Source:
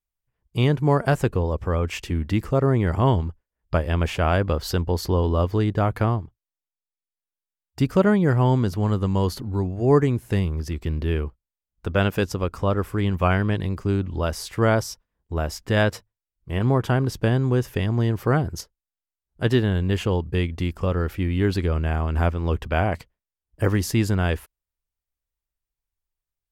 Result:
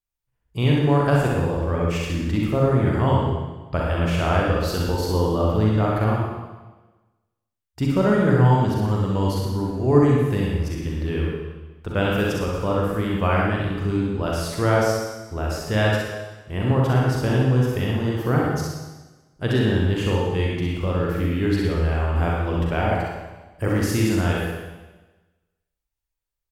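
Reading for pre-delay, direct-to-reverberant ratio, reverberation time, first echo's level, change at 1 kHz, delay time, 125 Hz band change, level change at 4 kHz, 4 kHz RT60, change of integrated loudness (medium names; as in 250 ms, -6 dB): 36 ms, -3.5 dB, 1.2 s, -4.5 dB, +2.0 dB, 65 ms, +1.0 dB, +1.5 dB, 1.2 s, +1.0 dB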